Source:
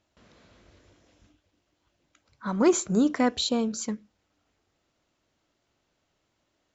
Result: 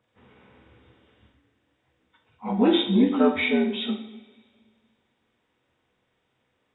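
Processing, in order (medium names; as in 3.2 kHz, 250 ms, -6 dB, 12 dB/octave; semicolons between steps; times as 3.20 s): frequency axis rescaled in octaves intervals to 80%; two-slope reverb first 0.59 s, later 2 s, from -18 dB, DRR 2.5 dB; trim +2.5 dB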